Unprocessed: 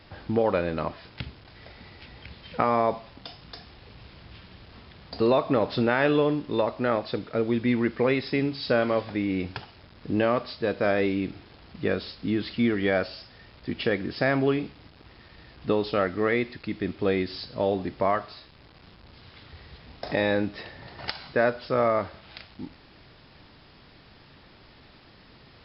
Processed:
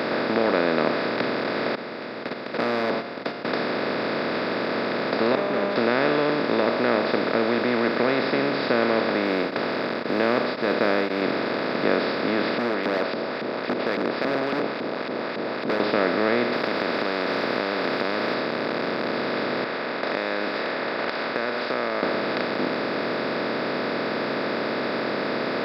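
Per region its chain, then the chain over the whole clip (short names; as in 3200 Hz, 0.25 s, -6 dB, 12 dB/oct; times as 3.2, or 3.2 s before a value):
1.75–3.45 gate -41 dBFS, range -31 dB + resonator 700 Hz, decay 0.32 s, mix 70% + hard clip -33.5 dBFS
5.35–5.76 sample leveller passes 2 + air absorption 420 m + resonator 200 Hz, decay 0.37 s, mix 100%
9.25–11.22 short-mantissa float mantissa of 6-bit + beating tremolo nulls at 1.9 Hz
12.58–15.8 bell 1700 Hz -10.5 dB 0.91 oct + LFO band-pass saw up 3.6 Hz 200–3000 Hz + overloaded stage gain 34 dB
16.53–18.34 compressor 5:1, threshold -34 dBFS + spectral compressor 10:1
19.64–22.03 low-pass opened by the level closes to 1700 Hz, open at -22.5 dBFS + HPF 1300 Hz + compressor 4:1, threshold -43 dBFS
whole clip: per-bin compression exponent 0.2; HPF 150 Hz 24 dB/oct; gain -5.5 dB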